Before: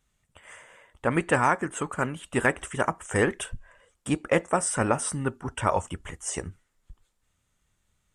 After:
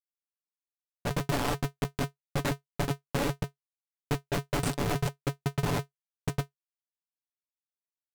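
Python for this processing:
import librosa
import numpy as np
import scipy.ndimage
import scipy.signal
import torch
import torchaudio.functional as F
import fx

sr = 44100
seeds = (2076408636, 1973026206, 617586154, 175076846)

y = fx.schmitt(x, sr, flips_db=-21.5)
y = y + 0.61 * np.pad(y, (int(6.9 * sr / 1000.0), 0))[:len(y)]
y = fx.env_lowpass(y, sr, base_hz=870.0, full_db=-27.0)
y = y * np.sign(np.sin(2.0 * np.pi * 140.0 * np.arange(len(y)) / sr))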